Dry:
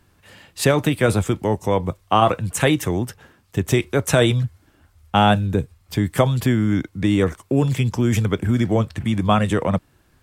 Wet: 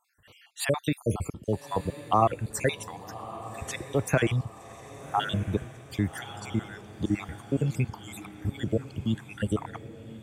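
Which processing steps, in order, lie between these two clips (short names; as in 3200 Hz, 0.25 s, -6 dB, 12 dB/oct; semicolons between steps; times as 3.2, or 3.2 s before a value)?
random spectral dropouts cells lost 61%; on a send: diffused feedback echo 1.182 s, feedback 51%, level -14 dB; on the sum: gain -6 dB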